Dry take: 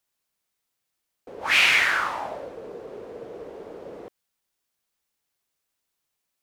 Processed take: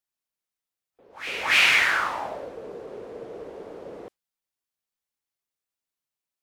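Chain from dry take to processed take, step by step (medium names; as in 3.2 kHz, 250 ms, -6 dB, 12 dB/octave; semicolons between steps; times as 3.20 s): pre-echo 284 ms -14.5 dB; spectral noise reduction 10 dB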